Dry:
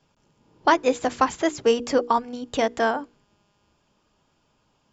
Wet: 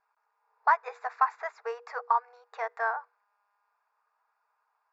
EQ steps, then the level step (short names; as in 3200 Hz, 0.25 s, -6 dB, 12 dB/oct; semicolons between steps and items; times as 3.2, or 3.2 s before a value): brick-wall FIR high-pass 440 Hz; air absorption 370 m; fixed phaser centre 1300 Hz, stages 4; 0.0 dB